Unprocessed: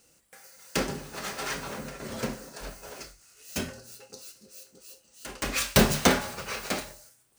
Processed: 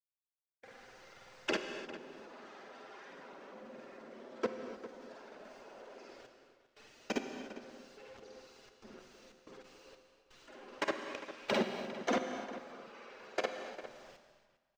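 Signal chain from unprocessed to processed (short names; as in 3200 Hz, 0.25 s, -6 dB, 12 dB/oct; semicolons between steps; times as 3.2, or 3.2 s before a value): half-wave gain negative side -7 dB; HPF 260 Hz 24 dB/oct; tilt shelf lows +4 dB, about 920 Hz; notch 4300 Hz, Q 25; compressor 4:1, threshold -40 dBFS, peak gain reduction 18 dB; bit-crush 9-bit; plain phase-vocoder stretch 2×; level quantiser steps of 23 dB; air absorption 190 m; outdoor echo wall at 69 m, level -13 dB; non-linear reverb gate 0.32 s flat, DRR 6 dB; gain +17 dB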